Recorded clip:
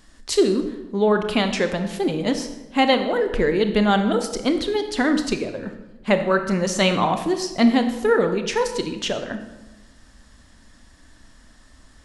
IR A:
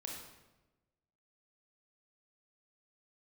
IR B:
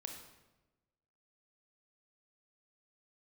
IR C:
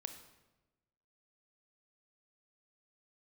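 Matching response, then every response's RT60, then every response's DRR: C; 1.1, 1.1, 1.1 seconds; −1.0, 3.0, 7.5 decibels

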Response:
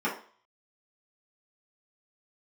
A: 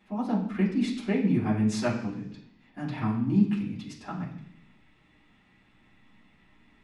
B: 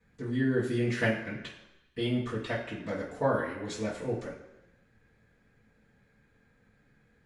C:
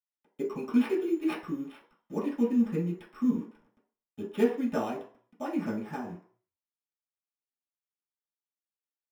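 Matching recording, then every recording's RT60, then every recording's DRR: C; 0.70, 1.0, 0.45 seconds; −7.5, −14.0, −8.0 decibels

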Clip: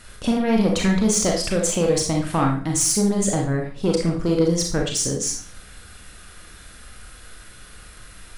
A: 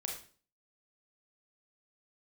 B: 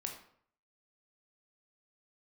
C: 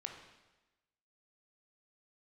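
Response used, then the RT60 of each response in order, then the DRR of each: A; 0.40, 0.60, 1.1 seconds; 0.0, 2.0, 2.5 decibels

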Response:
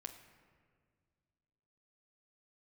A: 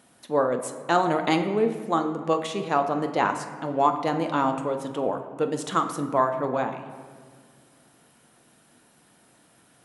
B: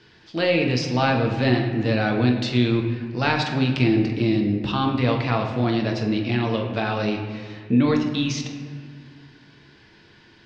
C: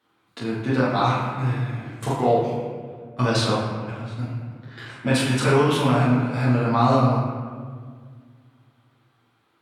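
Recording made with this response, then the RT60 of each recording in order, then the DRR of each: A; 1.9, 1.9, 1.8 seconds; 5.5, 1.5, −8.0 decibels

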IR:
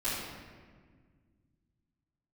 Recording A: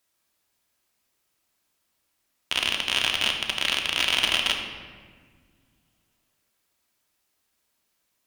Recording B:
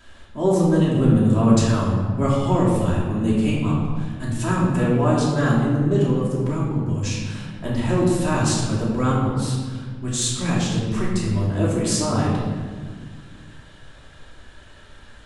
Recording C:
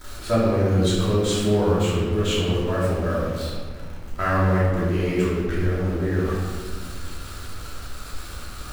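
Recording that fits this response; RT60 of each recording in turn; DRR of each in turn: C; 1.7, 1.6, 1.7 seconds; 2.0, −6.5, −15.0 decibels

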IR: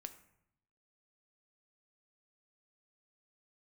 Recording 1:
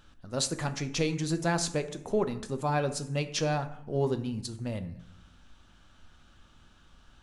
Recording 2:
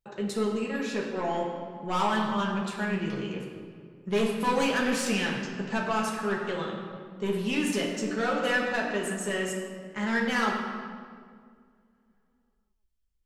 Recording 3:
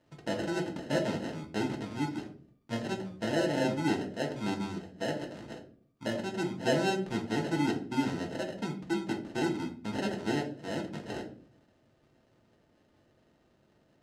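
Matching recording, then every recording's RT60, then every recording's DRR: 1; 0.75, 2.0, 0.50 seconds; 8.5, −3.0, 0.5 decibels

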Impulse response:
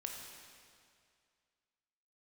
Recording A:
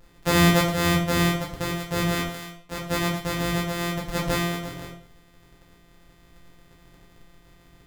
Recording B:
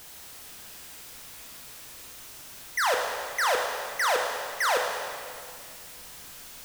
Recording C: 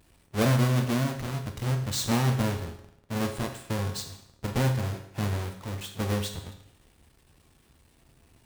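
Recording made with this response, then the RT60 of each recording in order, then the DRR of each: B; 0.45, 2.2, 0.75 seconds; −4.0, 0.5, 4.0 decibels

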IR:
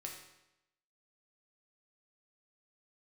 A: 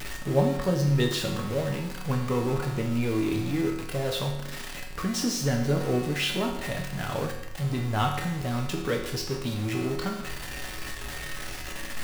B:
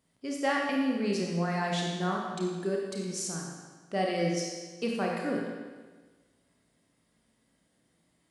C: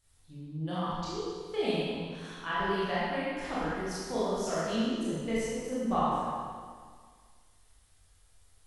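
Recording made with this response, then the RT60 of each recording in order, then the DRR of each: A; 0.90, 1.4, 1.8 seconds; −0.5, −1.5, −10.5 decibels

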